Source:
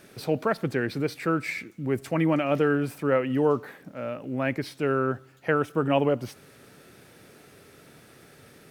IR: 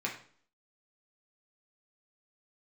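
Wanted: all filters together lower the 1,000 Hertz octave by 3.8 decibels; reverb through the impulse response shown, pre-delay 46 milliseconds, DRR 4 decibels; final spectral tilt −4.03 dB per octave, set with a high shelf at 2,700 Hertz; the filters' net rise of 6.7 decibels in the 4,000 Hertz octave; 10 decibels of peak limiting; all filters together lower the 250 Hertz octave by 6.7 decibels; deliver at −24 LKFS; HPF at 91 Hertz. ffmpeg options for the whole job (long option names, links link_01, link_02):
-filter_complex "[0:a]highpass=91,equalizer=frequency=250:width_type=o:gain=-8.5,equalizer=frequency=1000:width_type=o:gain=-6.5,highshelf=frequency=2700:gain=3,equalizer=frequency=4000:width_type=o:gain=7,alimiter=limit=-21dB:level=0:latency=1,asplit=2[link_01][link_02];[1:a]atrim=start_sample=2205,adelay=46[link_03];[link_02][link_03]afir=irnorm=-1:irlink=0,volume=-8.5dB[link_04];[link_01][link_04]amix=inputs=2:normalize=0,volume=7.5dB"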